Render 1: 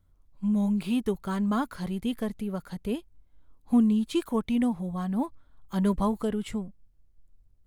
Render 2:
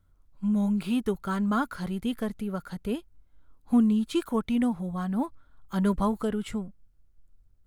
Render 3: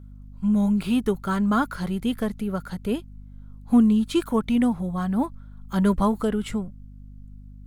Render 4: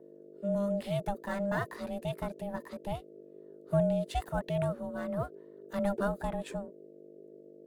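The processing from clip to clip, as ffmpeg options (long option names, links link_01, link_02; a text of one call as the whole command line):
ffmpeg -i in.wav -af "equalizer=frequency=1400:width_type=o:width=0.33:gain=7" out.wav
ffmpeg -i in.wav -af "aeval=exprs='val(0)+0.00501*(sin(2*PI*50*n/s)+sin(2*PI*2*50*n/s)/2+sin(2*PI*3*50*n/s)/3+sin(2*PI*4*50*n/s)/4+sin(2*PI*5*50*n/s)/5)':channel_layout=same,volume=4.5dB" out.wav
ffmpeg -i in.wav -filter_complex "[0:a]acrossover=split=160|870[link_01][link_02][link_03];[link_03]acrusher=bits=6:mode=log:mix=0:aa=0.000001[link_04];[link_01][link_02][link_04]amix=inputs=3:normalize=0,aeval=exprs='val(0)*sin(2*PI*400*n/s)':channel_layout=same,volume=-7.5dB" out.wav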